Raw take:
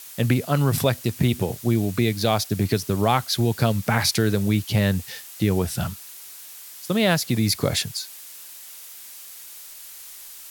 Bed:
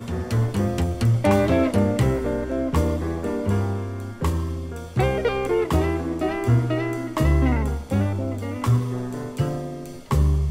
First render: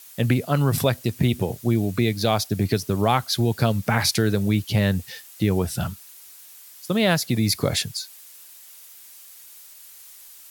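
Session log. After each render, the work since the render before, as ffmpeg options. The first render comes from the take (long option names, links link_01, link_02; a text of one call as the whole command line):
ffmpeg -i in.wav -af "afftdn=noise_reduction=6:noise_floor=-42" out.wav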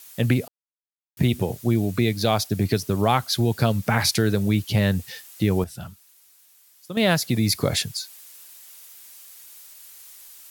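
ffmpeg -i in.wav -filter_complex "[0:a]asplit=5[link_01][link_02][link_03][link_04][link_05];[link_01]atrim=end=0.48,asetpts=PTS-STARTPTS,afade=type=out:start_time=0.476:duration=0.004:curve=hsin[link_06];[link_02]atrim=start=0.48:end=1.17,asetpts=PTS-STARTPTS,volume=0[link_07];[link_03]atrim=start=1.17:end=5.642,asetpts=PTS-STARTPTS,afade=type=in:duration=0.004:curve=hsin[link_08];[link_04]atrim=start=5.638:end=6.972,asetpts=PTS-STARTPTS,volume=-10dB[link_09];[link_05]atrim=start=6.968[link_10];[link_06][link_07][link_08]concat=n=3:v=0:a=1[link_11];[link_11][link_09]acrossfade=duration=0.004:curve1=hsin:curve2=hsin[link_12];[link_12][link_10]acrossfade=duration=0.004:curve1=hsin:curve2=hsin" out.wav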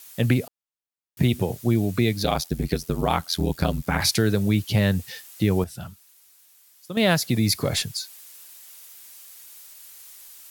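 ffmpeg -i in.wav -filter_complex "[0:a]asplit=3[link_01][link_02][link_03];[link_01]afade=type=out:start_time=2.23:duration=0.02[link_04];[link_02]aeval=exprs='val(0)*sin(2*PI*42*n/s)':channel_layout=same,afade=type=in:start_time=2.23:duration=0.02,afade=type=out:start_time=4:duration=0.02[link_05];[link_03]afade=type=in:start_time=4:duration=0.02[link_06];[link_04][link_05][link_06]amix=inputs=3:normalize=0,asettb=1/sr,asplit=3[link_07][link_08][link_09];[link_07]atrim=end=7.544[link_10];[link_08]atrim=start=7.54:end=7.95,asetpts=PTS-STARTPTS,afade=type=in:duration=0.004:curve=qsin,afade=type=out:start_time=0.406:duration=0.004:curve=qsin,aeval=exprs='(tanh(4.47*val(0)+0.15)-tanh(0.15))/4.47':channel_layout=same[link_11];[link_09]atrim=start=7.946[link_12];[link_10][link_11]acrossfade=duration=0.004:curve1=hsin:curve2=qsin[link_13];[link_13][link_12]acrossfade=duration=0.004:curve1=qsin:curve2=hsin" out.wav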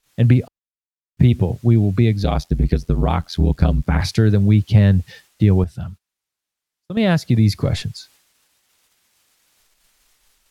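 ffmpeg -i in.wav -af "agate=range=-18dB:threshold=-44dB:ratio=16:detection=peak,aemphasis=mode=reproduction:type=bsi" out.wav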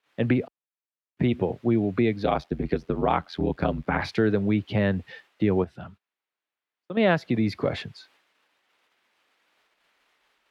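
ffmpeg -i in.wav -filter_complex "[0:a]highpass=48,acrossover=split=240 3300:gain=0.126 1 0.0794[link_01][link_02][link_03];[link_01][link_02][link_03]amix=inputs=3:normalize=0" out.wav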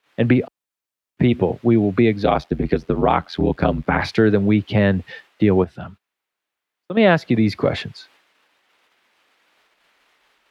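ffmpeg -i in.wav -af "volume=7dB,alimiter=limit=-3dB:level=0:latency=1" out.wav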